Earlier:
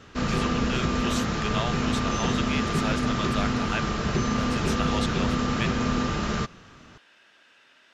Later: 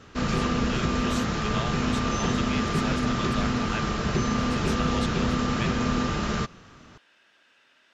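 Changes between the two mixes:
speech -4.5 dB; reverb: on, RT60 1.8 s

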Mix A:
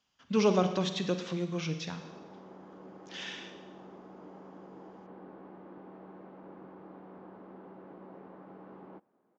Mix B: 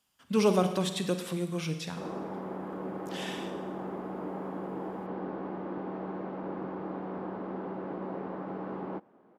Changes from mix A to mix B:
background +11.5 dB; master: remove elliptic low-pass 6500 Hz, stop band 40 dB

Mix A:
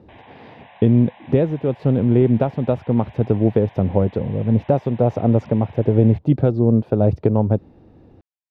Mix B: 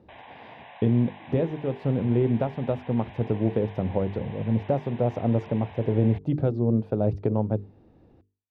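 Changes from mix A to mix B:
speech -7.0 dB; master: add notches 50/100/150/200/250/300/350/400/450 Hz

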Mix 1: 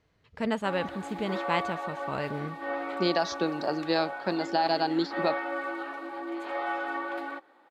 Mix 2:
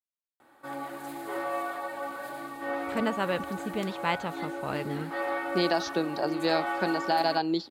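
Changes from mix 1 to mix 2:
speech: entry +2.55 s; background: remove three-band isolator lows -22 dB, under 220 Hz, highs -18 dB, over 5200 Hz

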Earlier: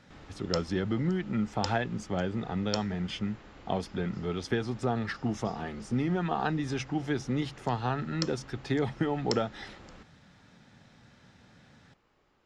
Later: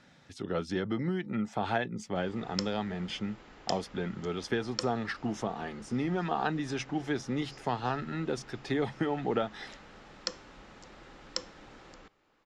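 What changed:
background: entry +2.05 s; master: add bell 78 Hz -8 dB 2.1 oct

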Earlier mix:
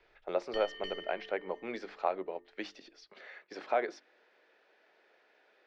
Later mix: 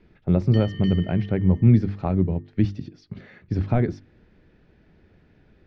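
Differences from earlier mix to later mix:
speech: remove HPF 520 Hz 24 dB/oct; background +3.5 dB

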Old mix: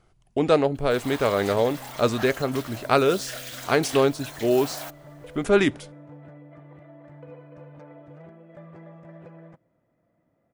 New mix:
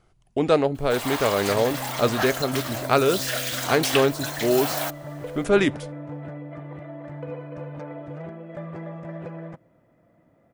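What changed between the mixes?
first sound +9.0 dB; second sound +9.5 dB

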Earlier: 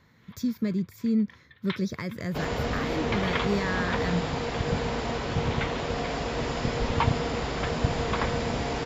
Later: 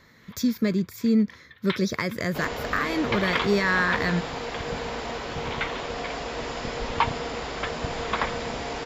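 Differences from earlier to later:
speech +9.5 dB; first sound +4.5 dB; master: add bell 110 Hz -9.5 dB 2.5 oct

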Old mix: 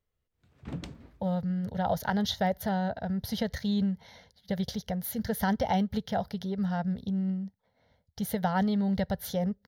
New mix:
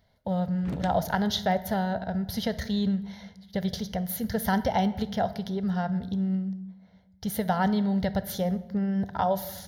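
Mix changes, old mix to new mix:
speech: entry -0.95 s; reverb: on, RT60 1.1 s

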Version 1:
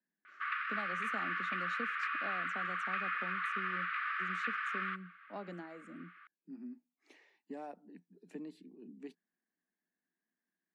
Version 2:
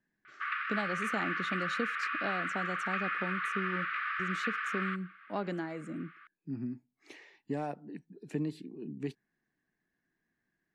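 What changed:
speech +8.0 dB; master: remove rippled Chebyshev high-pass 170 Hz, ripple 3 dB

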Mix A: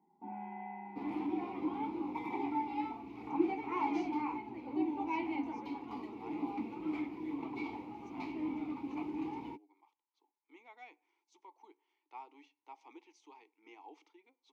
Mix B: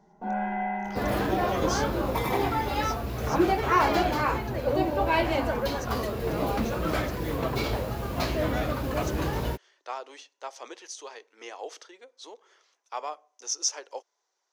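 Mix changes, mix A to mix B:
speech: entry -2.25 s; second sound: add low shelf 100 Hz +8 dB; master: remove vowel filter u

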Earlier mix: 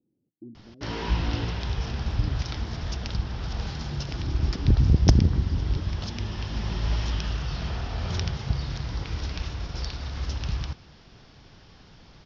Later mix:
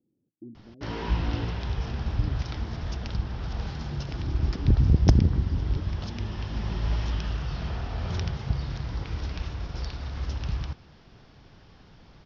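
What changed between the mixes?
background: send -9.5 dB; master: add high shelf 3400 Hz -8 dB

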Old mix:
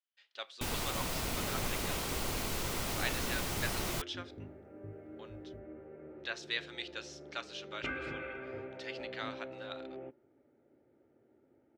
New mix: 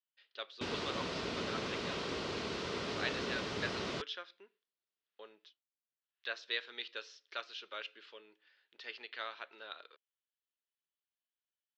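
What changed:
second sound: muted; master: add speaker cabinet 130–4900 Hz, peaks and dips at 130 Hz -5 dB, 420 Hz +6 dB, 800 Hz -6 dB, 2200 Hz -3 dB

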